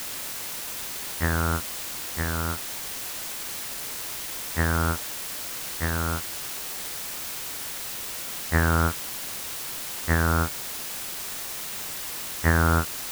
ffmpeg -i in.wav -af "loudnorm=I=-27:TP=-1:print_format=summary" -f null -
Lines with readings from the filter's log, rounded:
Input Integrated:    -27.6 LUFS
Input True Peak:      -5.9 dBTP
Input LRA:             2.4 LU
Input Threshold:     -37.6 LUFS